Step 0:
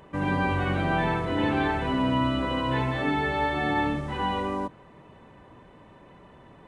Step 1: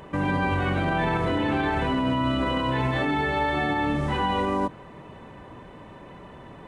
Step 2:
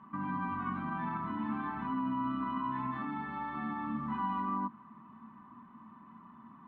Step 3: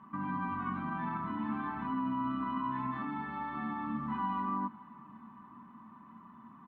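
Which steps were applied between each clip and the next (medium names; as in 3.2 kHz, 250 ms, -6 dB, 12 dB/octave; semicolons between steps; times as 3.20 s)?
peak limiter -23.5 dBFS, peak gain reduction 9.5 dB; trim +7 dB
two resonant band-passes 500 Hz, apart 2.3 oct
feedback delay 516 ms, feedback 60%, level -23.5 dB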